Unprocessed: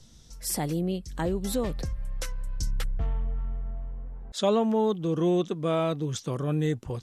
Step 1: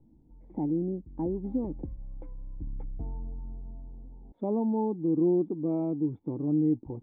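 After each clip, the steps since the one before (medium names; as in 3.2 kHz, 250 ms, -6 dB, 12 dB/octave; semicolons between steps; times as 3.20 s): cascade formant filter u; trim +7 dB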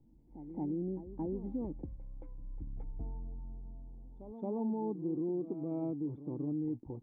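peak limiter -23.5 dBFS, peak gain reduction 6 dB; reverse echo 223 ms -12 dB; trim -5.5 dB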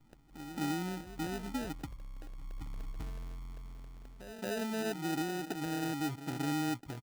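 comb 6.9 ms, depth 33%; crackle 280 per s -46 dBFS; sample-rate reducer 1.1 kHz, jitter 0%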